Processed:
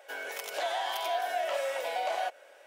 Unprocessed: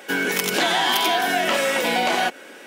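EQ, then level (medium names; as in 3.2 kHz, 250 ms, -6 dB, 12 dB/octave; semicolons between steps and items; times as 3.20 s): ladder high-pass 550 Hz, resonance 65%; -5.5 dB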